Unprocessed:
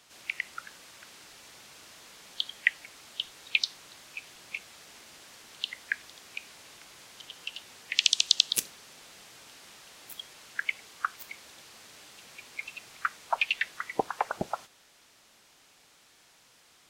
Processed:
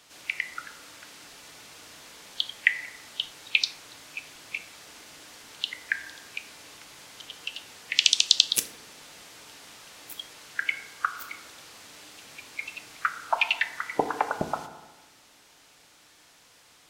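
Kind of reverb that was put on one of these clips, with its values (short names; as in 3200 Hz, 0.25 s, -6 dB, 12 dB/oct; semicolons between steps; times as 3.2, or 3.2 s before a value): FDN reverb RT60 1.2 s, high-frequency decay 0.3×, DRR 7.5 dB; gain +3 dB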